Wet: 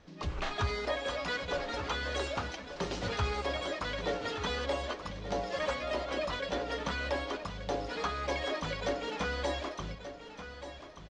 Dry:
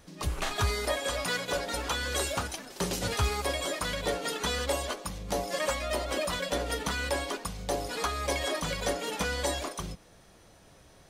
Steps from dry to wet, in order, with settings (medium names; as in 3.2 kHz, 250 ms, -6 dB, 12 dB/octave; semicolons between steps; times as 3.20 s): Bessel low-pass 3.9 kHz, order 8; hum notches 60/120/180 Hz; in parallel at -9.5 dB: saturation -27 dBFS, distortion -14 dB; on the sum: feedback delay 1182 ms, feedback 32%, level -11.5 dB; trim -4.5 dB